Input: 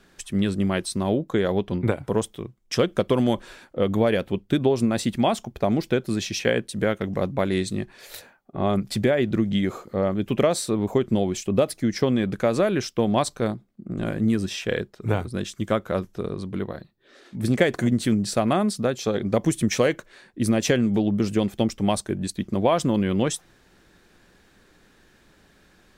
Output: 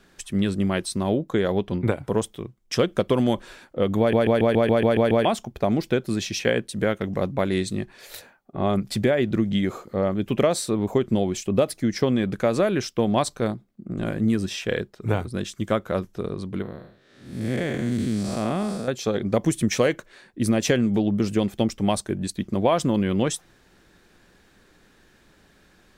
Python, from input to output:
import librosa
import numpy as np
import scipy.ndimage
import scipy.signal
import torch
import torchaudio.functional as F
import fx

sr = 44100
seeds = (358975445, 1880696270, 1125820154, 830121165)

y = fx.spec_blur(x, sr, span_ms=233.0, at=(16.62, 18.88))
y = fx.edit(y, sr, fx.stutter_over(start_s=3.99, slice_s=0.14, count=9), tone=tone)